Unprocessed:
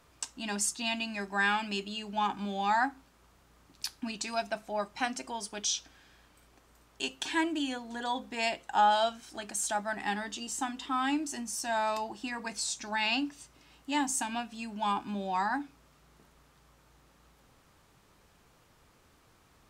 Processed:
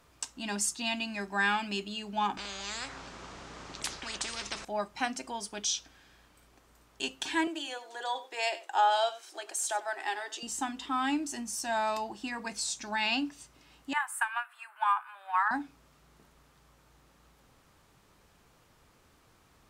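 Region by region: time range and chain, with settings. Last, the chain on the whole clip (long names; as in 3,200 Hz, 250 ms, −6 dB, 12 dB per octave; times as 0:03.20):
0:02.37–0:04.65: low-pass filter 7,200 Hz 24 dB per octave + every bin compressed towards the loudest bin 10 to 1
0:07.47–0:10.43: Chebyshev high-pass filter 340 Hz, order 5 + single-tap delay 94 ms −16.5 dB
0:13.93–0:15.51: drawn EQ curve 210 Hz 0 dB, 1,400 Hz +11 dB, 6,100 Hz −25 dB, 9,400 Hz −1 dB + transient designer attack +6 dB, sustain 0 dB + high-pass filter 1,200 Hz 24 dB per octave
whole clip: no processing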